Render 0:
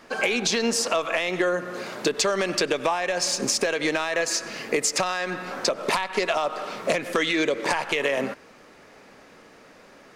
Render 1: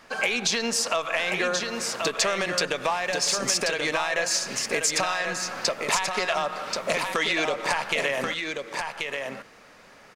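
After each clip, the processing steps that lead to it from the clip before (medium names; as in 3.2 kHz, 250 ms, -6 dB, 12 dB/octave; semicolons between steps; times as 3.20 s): peaking EQ 330 Hz -8 dB 1.4 oct; delay 1083 ms -5 dB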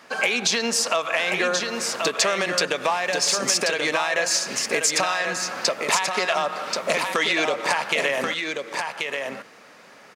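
high-pass 160 Hz 12 dB/octave; trim +3 dB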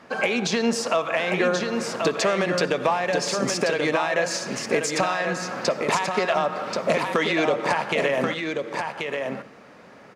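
tilt EQ -3 dB/octave; reverberation, pre-delay 51 ms, DRR 17.5 dB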